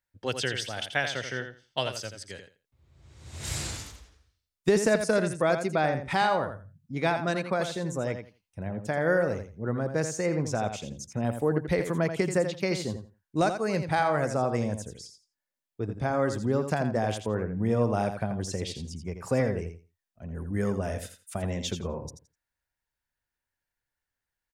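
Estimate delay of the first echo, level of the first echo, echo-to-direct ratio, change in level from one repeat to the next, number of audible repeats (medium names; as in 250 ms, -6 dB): 84 ms, -8.5 dB, -8.5 dB, -15.0 dB, 2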